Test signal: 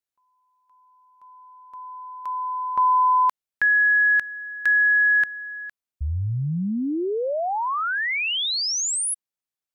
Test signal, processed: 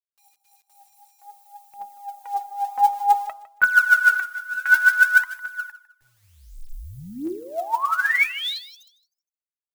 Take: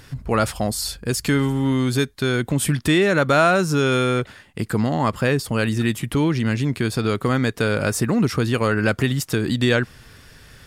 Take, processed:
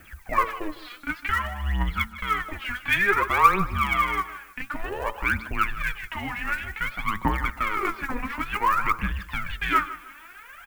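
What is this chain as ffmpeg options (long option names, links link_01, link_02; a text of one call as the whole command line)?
ffmpeg -i in.wav -filter_complex "[0:a]equalizer=frequency=260:width=0.38:gain=-9.5,highpass=frequency=190:width_type=q:width=0.5412,highpass=frequency=190:width_type=q:width=1.307,lowpass=frequency=2500:width_type=q:width=0.5176,lowpass=frequency=2500:width_type=q:width=0.7071,lowpass=frequency=2500:width_type=q:width=1.932,afreqshift=-200,asplit=2[link_01][link_02];[link_02]acompressor=threshold=-38dB:ratio=5:attack=14:release=573:knee=6:detection=peak,volume=-2dB[link_03];[link_01][link_03]amix=inputs=2:normalize=0,aphaser=in_gain=1:out_gain=1:delay=4.2:decay=0.79:speed=0.55:type=triangular,adynamicequalizer=threshold=0.0398:dfrequency=1000:dqfactor=2.6:tfrequency=1000:tqfactor=2.6:attack=5:release=100:ratio=0.375:range=2:mode=boostabove:tftype=bell,acrusher=bits=10:mix=0:aa=0.000001,crystalizer=i=7.5:c=0,bandreject=frequency=111.8:width_type=h:width=4,bandreject=frequency=223.6:width_type=h:width=4,bandreject=frequency=335.4:width_type=h:width=4,bandreject=frequency=447.2:width_type=h:width=4,bandreject=frequency=559:width_type=h:width=4,bandreject=frequency=670.8:width_type=h:width=4,bandreject=frequency=782.6:width_type=h:width=4,bandreject=frequency=894.4:width_type=h:width=4,bandreject=frequency=1006.2:width_type=h:width=4,bandreject=frequency=1118:width_type=h:width=4,bandreject=frequency=1229.8:width_type=h:width=4,bandreject=frequency=1341.6:width_type=h:width=4,bandreject=frequency=1453.4:width_type=h:width=4,bandreject=frequency=1565.2:width_type=h:width=4,asplit=2[link_04][link_05];[link_05]aecho=0:1:155|310|465:0.158|0.0475|0.0143[link_06];[link_04][link_06]amix=inputs=2:normalize=0,volume=-8dB" out.wav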